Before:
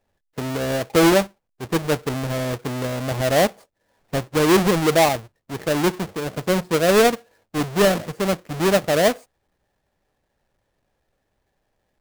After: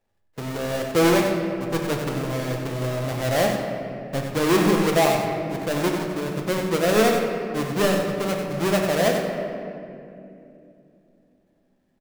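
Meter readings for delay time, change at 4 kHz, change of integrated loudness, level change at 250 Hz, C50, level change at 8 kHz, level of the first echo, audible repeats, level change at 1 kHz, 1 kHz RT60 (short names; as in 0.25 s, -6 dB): 94 ms, -3.0 dB, -2.5 dB, -1.5 dB, 2.0 dB, -3.5 dB, -7.5 dB, 1, -2.0 dB, 2.2 s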